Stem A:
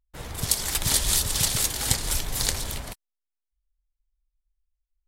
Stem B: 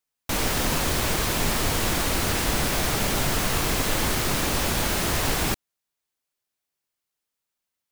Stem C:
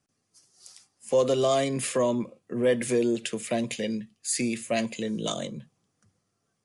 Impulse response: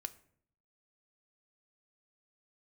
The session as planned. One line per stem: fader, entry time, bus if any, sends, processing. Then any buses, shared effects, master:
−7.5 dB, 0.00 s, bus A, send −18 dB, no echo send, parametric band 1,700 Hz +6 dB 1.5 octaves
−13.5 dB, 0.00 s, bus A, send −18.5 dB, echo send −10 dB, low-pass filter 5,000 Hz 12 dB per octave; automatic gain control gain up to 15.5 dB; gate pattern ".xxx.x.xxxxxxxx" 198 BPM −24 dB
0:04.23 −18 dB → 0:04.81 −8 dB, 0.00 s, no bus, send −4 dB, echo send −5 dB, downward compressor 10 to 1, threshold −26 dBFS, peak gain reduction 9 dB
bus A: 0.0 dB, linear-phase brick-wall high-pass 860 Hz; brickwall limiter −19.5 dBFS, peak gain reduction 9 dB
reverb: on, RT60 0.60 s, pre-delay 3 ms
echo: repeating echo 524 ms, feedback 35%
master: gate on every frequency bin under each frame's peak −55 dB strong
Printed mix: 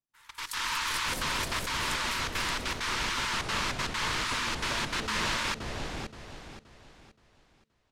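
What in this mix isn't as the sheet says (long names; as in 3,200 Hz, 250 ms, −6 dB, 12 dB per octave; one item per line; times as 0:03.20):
stem A −7.5 dB → −19.5 dB
stem C −18.0 dB → −24.5 dB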